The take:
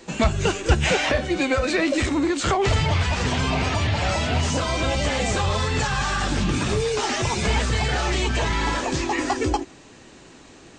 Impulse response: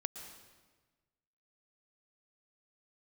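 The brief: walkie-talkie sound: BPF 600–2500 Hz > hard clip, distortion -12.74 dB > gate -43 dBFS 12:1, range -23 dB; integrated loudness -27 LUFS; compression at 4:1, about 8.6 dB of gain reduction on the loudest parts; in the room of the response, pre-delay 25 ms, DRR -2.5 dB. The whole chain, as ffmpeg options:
-filter_complex "[0:a]acompressor=threshold=-23dB:ratio=4,asplit=2[a][b];[1:a]atrim=start_sample=2205,adelay=25[c];[b][c]afir=irnorm=-1:irlink=0,volume=3dB[d];[a][d]amix=inputs=2:normalize=0,highpass=600,lowpass=2.5k,asoftclip=type=hard:threshold=-24.5dB,agate=range=-23dB:threshold=-43dB:ratio=12,volume=1.5dB"

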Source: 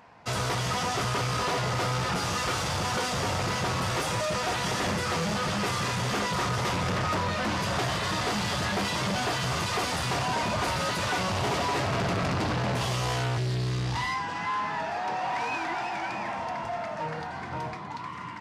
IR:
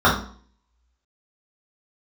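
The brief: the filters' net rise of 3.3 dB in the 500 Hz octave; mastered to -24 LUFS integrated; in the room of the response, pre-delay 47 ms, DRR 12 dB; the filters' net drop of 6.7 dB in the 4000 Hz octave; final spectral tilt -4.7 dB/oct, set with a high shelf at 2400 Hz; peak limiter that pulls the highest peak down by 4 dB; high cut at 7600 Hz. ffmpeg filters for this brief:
-filter_complex "[0:a]lowpass=7.6k,equalizer=f=500:t=o:g=4.5,highshelf=f=2.4k:g=-6,equalizer=f=4k:t=o:g=-3,alimiter=limit=-22dB:level=0:latency=1,asplit=2[a][b];[1:a]atrim=start_sample=2205,adelay=47[c];[b][c]afir=irnorm=-1:irlink=0,volume=-36dB[d];[a][d]amix=inputs=2:normalize=0,volume=6dB"

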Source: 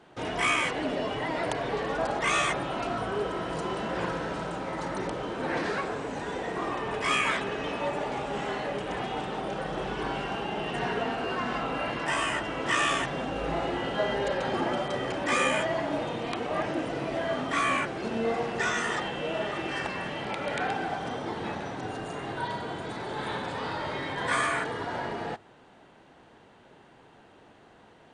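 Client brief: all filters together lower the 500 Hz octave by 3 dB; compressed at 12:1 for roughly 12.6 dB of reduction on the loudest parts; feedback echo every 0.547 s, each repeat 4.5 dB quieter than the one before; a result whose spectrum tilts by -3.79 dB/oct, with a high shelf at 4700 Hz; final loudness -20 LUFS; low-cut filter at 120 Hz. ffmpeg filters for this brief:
-af "highpass=120,equalizer=f=500:t=o:g=-4,highshelf=f=4.7k:g=5,acompressor=threshold=-34dB:ratio=12,aecho=1:1:547|1094|1641|2188|2735|3282|3829|4376|4923:0.596|0.357|0.214|0.129|0.0772|0.0463|0.0278|0.0167|0.01,volume=16dB"

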